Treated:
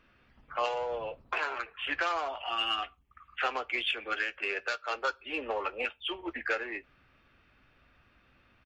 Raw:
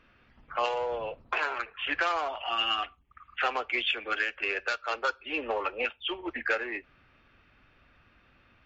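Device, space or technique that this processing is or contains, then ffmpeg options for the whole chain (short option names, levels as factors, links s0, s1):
exciter from parts: -filter_complex "[0:a]asettb=1/sr,asplit=3[s0][s1][s2];[s0]atrim=end=4.384[s3];[s1]atrim=start=4.38:end=4.95,asetpts=PTS-STARTPTS,afade=t=in:d=0.004:c=qsin,afade=t=out:st=0.566:d=0.004:c=qsin,highpass=97[s4];[s2]atrim=start=4.946[s5];[s3][s4]acrossfade=d=0.004:c1=hsin:c2=qsin[s6];[s6][s5]acrossfade=d=0.004:c1=qsin:c2=hsin,asplit=2[s7][s8];[s8]adelay=15,volume=0.224[s9];[s7][s9]amix=inputs=2:normalize=0,asplit=2[s10][s11];[s11]highpass=3400,asoftclip=type=tanh:threshold=0.0224,volume=0.299[s12];[s10][s12]amix=inputs=2:normalize=0,volume=0.75"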